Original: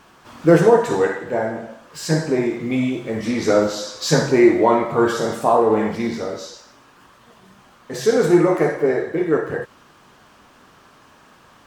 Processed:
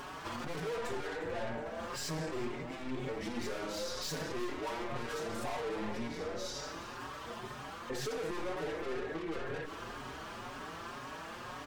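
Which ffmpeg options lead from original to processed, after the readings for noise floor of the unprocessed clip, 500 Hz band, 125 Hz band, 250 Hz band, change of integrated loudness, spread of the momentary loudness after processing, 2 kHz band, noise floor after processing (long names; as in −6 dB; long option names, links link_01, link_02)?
−51 dBFS, −21.0 dB, −19.5 dB, −22.0 dB, −21.0 dB, 7 LU, −14.0 dB, −46 dBFS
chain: -filter_complex "[0:a]equalizer=frequency=190:width=5.8:gain=-8,aeval=exprs='(tanh(39.8*val(0)+0.5)-tanh(0.5))/39.8':channel_layout=same,alimiter=level_in=13dB:limit=-24dB:level=0:latency=1:release=45,volume=-13dB,highshelf=frequency=6000:gain=-6,asplit=6[link_01][link_02][link_03][link_04][link_05][link_06];[link_02]adelay=361,afreqshift=-36,volume=-17dB[link_07];[link_03]adelay=722,afreqshift=-72,volume=-22dB[link_08];[link_04]adelay=1083,afreqshift=-108,volume=-27.1dB[link_09];[link_05]adelay=1444,afreqshift=-144,volume=-32.1dB[link_10];[link_06]adelay=1805,afreqshift=-180,volume=-37.1dB[link_11];[link_01][link_07][link_08][link_09][link_10][link_11]amix=inputs=6:normalize=0,acompressor=mode=upward:threshold=-55dB:ratio=2.5,bandreject=frequency=50:width_type=h:width=6,bandreject=frequency=100:width_type=h:width=6,bandreject=frequency=150:width_type=h:width=6,bandreject=frequency=200:width_type=h:width=6,bandreject=frequency=250:width_type=h:width=6,bandreject=frequency=300:width_type=h:width=6,bandreject=frequency=350:width_type=h:width=6,acompressor=threshold=-43dB:ratio=6,asplit=2[link_12][link_13];[link_13]adelay=5.1,afreqshift=2[link_14];[link_12][link_14]amix=inputs=2:normalize=1,volume=11dB"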